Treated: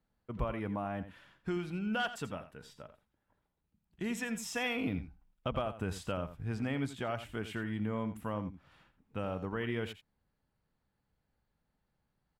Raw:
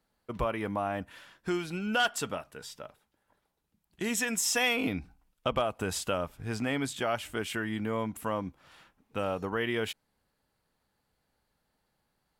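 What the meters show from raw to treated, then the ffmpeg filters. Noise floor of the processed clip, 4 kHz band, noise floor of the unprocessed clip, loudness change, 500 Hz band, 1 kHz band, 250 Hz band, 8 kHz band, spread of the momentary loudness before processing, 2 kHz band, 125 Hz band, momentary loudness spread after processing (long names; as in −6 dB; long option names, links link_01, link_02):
−83 dBFS, −9.5 dB, −79 dBFS, −5.5 dB, −6.0 dB, −6.5 dB, −2.5 dB, −14.0 dB, 15 LU, −7.5 dB, +0.5 dB, 13 LU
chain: -af "bass=frequency=250:gain=8,treble=frequency=4000:gain=-8,aecho=1:1:85:0.237,volume=-7dB"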